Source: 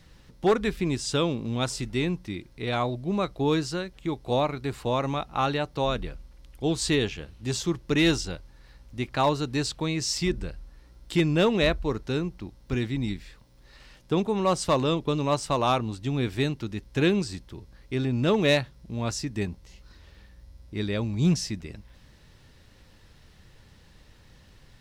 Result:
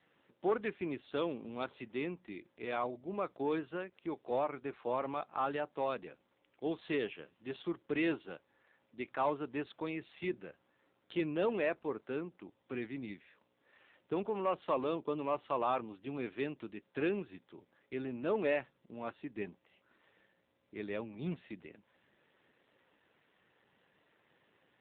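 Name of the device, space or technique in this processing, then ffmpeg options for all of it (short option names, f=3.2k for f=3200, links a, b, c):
telephone: -af "highpass=320,lowpass=3.2k,asoftclip=type=tanh:threshold=-16dB,volume=-6dB" -ar 8000 -c:a libopencore_amrnb -b:a 7400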